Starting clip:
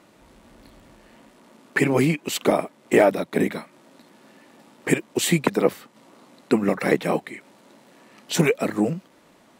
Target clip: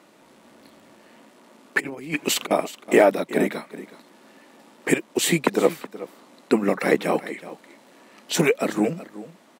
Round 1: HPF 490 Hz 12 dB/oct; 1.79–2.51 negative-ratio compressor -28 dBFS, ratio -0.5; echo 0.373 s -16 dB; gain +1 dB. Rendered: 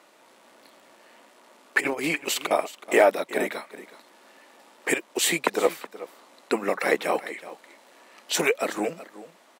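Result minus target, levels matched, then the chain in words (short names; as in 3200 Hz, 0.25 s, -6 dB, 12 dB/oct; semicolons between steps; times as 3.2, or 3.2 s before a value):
250 Hz band -5.5 dB
HPF 200 Hz 12 dB/oct; 1.79–2.51 negative-ratio compressor -28 dBFS, ratio -0.5; echo 0.373 s -16 dB; gain +1 dB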